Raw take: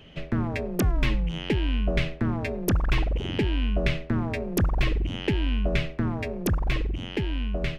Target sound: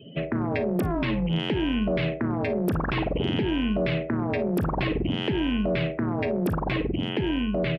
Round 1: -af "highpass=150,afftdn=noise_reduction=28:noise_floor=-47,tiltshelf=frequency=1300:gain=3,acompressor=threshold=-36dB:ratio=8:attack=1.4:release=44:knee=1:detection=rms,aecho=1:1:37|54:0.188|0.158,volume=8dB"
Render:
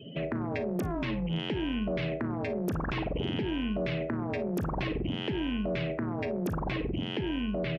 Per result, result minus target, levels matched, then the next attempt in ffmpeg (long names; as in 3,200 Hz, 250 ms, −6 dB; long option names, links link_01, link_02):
downward compressor: peak gain reduction +6 dB; 8,000 Hz band +3.5 dB
-af "highpass=150,afftdn=noise_reduction=28:noise_floor=-47,tiltshelf=frequency=1300:gain=3,acompressor=threshold=-29dB:ratio=8:attack=1.4:release=44:knee=1:detection=rms,aecho=1:1:37|54:0.188|0.158,volume=8dB"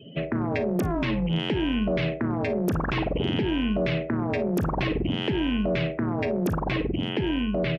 8,000 Hz band +4.0 dB
-af "highpass=150,equalizer=frequency=6400:width=3.3:gain=-10.5,afftdn=noise_reduction=28:noise_floor=-47,tiltshelf=frequency=1300:gain=3,acompressor=threshold=-29dB:ratio=8:attack=1.4:release=44:knee=1:detection=rms,aecho=1:1:37|54:0.188|0.158,volume=8dB"